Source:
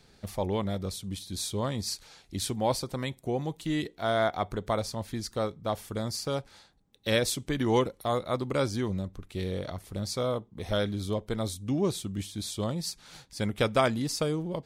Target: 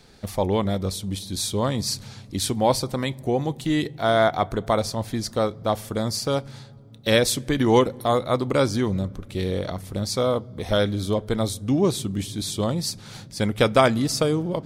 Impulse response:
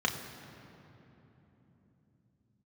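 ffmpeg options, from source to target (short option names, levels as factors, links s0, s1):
-filter_complex "[0:a]asplit=2[s0][s1];[1:a]atrim=start_sample=2205,lowshelf=f=140:g=10.5[s2];[s1][s2]afir=irnorm=-1:irlink=0,volume=0.0376[s3];[s0][s3]amix=inputs=2:normalize=0,volume=2.24"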